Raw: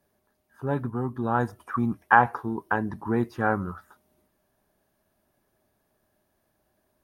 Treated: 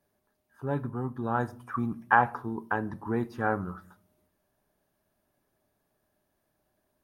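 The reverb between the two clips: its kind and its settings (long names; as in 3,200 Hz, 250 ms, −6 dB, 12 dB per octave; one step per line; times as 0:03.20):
rectangular room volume 610 cubic metres, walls furnished, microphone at 0.36 metres
level −4 dB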